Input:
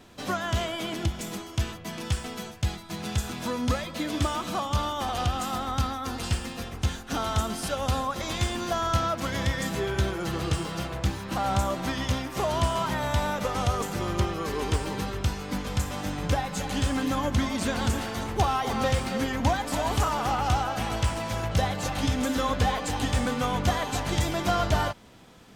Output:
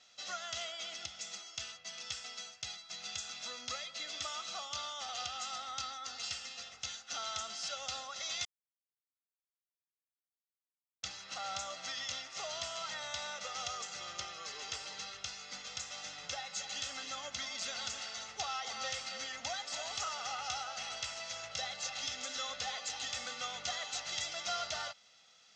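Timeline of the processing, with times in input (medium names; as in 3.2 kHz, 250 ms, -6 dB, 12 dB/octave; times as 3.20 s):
8.45–11.03 s: mute
whole clip: steep low-pass 6.6 kHz 48 dB/octave; differentiator; comb 1.5 ms, depth 60%; trim +1 dB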